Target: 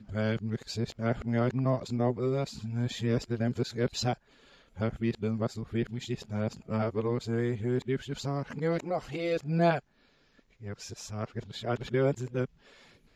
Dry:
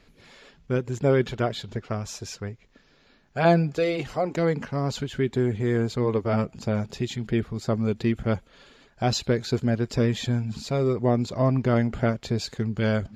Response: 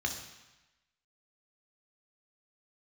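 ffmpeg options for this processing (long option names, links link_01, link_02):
-af "areverse,volume=-6dB"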